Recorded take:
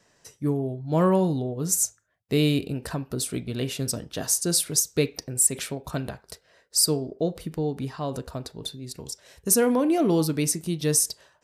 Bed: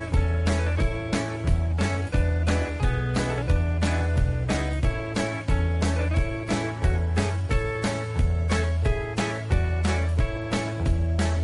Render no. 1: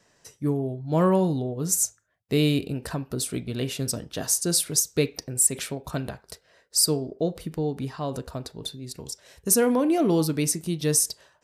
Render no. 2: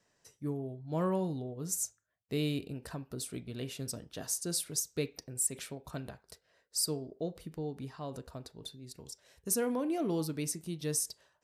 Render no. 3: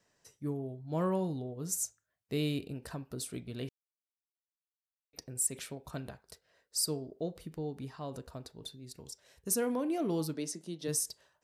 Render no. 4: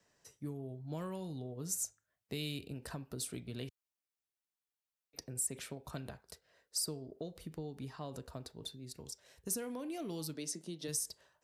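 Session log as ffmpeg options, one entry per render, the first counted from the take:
-af anull
-af "volume=0.282"
-filter_complex "[0:a]asplit=3[s0][s1][s2];[s0]afade=t=out:st=10.33:d=0.02[s3];[s1]highpass=f=190:w=0.5412,highpass=f=190:w=1.3066,equalizer=f=570:t=q:w=4:g=4,equalizer=f=1200:t=q:w=4:g=-3,equalizer=f=2400:t=q:w=4:g=-7,equalizer=f=8400:t=q:w=4:g=-6,lowpass=f=9600:w=0.5412,lowpass=f=9600:w=1.3066,afade=t=in:st=10.33:d=0.02,afade=t=out:st=10.87:d=0.02[s4];[s2]afade=t=in:st=10.87:d=0.02[s5];[s3][s4][s5]amix=inputs=3:normalize=0,asplit=3[s6][s7][s8];[s6]atrim=end=3.69,asetpts=PTS-STARTPTS,afade=t=out:st=3.686:d=0.004:c=hsin[s9];[s7]atrim=start=3.69:end=5.13,asetpts=PTS-STARTPTS,volume=0[s10];[s8]atrim=start=5.13,asetpts=PTS-STARTPTS,afade=t=in:d=0.004:c=hsin[s11];[s9][s10][s11]concat=n=3:v=0:a=1"
-filter_complex "[0:a]acrossover=split=100|2200[s0][s1][s2];[s1]acompressor=threshold=0.01:ratio=6[s3];[s2]alimiter=level_in=1.19:limit=0.0631:level=0:latency=1:release=442,volume=0.841[s4];[s0][s3][s4]amix=inputs=3:normalize=0"

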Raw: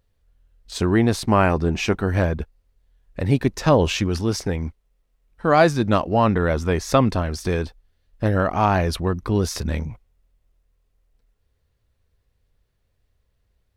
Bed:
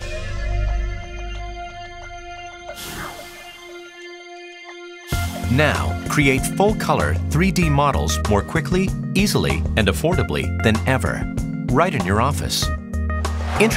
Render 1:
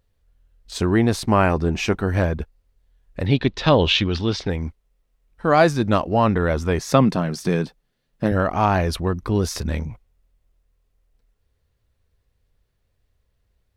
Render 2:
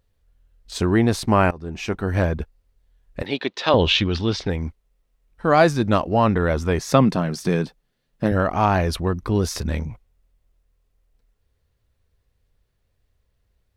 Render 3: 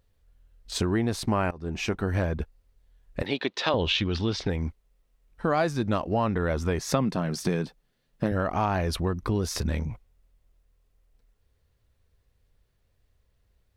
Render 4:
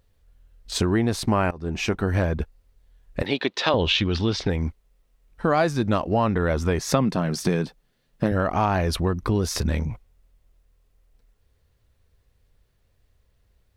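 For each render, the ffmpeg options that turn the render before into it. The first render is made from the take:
-filter_complex "[0:a]asettb=1/sr,asplit=3[s0][s1][s2];[s0]atrim=end=3.264[s3];[s1]atrim=start=3.26:end=4.5,asetpts=PTS-STARTPTS,afade=t=in:d=0.004:c=qsin,afade=t=out:st=1.236:d=0.004:c=qsin,lowpass=f=3600:t=q:w=3.6[s4];[s2]atrim=start=4.496[s5];[s3][s4]acrossfade=d=0.004:c1=hsin:c2=qsin[s6];[s6][s5]acrossfade=d=0.004:c1=qsin:c2=hsin,asettb=1/sr,asplit=3[s7][s8][s9];[s7]atrim=end=6.794[s10];[s8]atrim=start=6.79:end=8.32,asetpts=PTS-STARTPTS,afade=t=in:d=0.004:c=qsin,afade=t=out:st=1.526:d=0.004:c=qsin,lowshelf=f=110:t=q:w=3:g=-11.5[s11];[s9]atrim=start=8.316[s12];[s10][s11]acrossfade=d=0.004:c1=hsin:c2=qsin[s13];[s13][s12]acrossfade=d=0.004:c1=qsin:c2=hsin"
-filter_complex "[0:a]asettb=1/sr,asplit=3[s0][s1][s2];[s0]atrim=end=3.224[s3];[s1]atrim=start=3.22:end=3.74,asetpts=PTS-STARTPTS,afade=t=in:d=0.004:c=qsin,afade=t=out:st=0.516:d=0.004:c=qsin,highpass=390[s4];[s2]atrim=start=3.736[s5];[s3][s4]acrossfade=d=0.004:c1=hsin:c2=qsin[s6];[s6][s5]acrossfade=d=0.004:c1=qsin:c2=hsin,asplit=2[s7][s8];[s7]atrim=end=1.51,asetpts=PTS-STARTPTS,afade=t=out:st=1.506:d=0.004:c=hsin:silence=0.0944061[s9];[s8]atrim=start=1.51,asetpts=PTS-STARTPTS,afade=t=in:d=0.71:silence=0.0944061[s10];[s9][s10]concat=n=2:v=0:a=1"
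-af "acompressor=threshold=0.0631:ratio=3"
-af "volume=1.58"

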